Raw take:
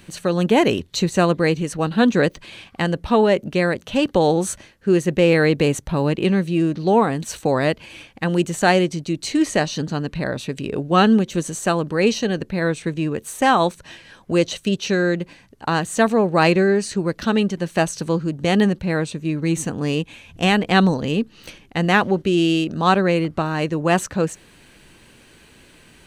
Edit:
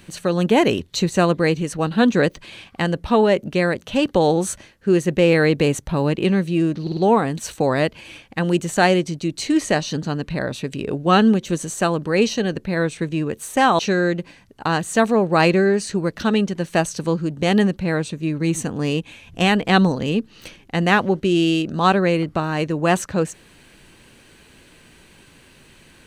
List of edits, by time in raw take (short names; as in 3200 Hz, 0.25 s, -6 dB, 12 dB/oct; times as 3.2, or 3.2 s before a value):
6.82 stutter 0.05 s, 4 plays
13.64–14.81 cut